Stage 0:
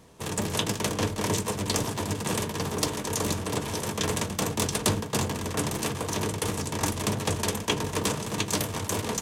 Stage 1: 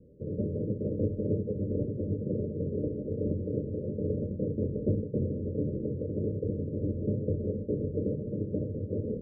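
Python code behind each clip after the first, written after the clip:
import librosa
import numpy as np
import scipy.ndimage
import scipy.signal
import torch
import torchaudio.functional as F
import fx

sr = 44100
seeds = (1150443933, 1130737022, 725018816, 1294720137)

y = scipy.signal.sosfilt(scipy.signal.cheby1(10, 1.0, 590.0, 'lowpass', fs=sr, output='sos'), x)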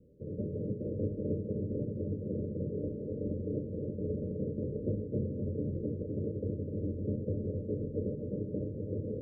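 y = fx.echo_feedback(x, sr, ms=256, feedback_pct=45, wet_db=-6)
y = y * 10.0 ** (-5.0 / 20.0)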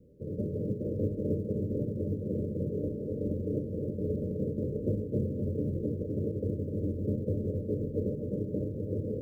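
y = fx.quant_float(x, sr, bits=6)
y = y * 10.0 ** (3.0 / 20.0)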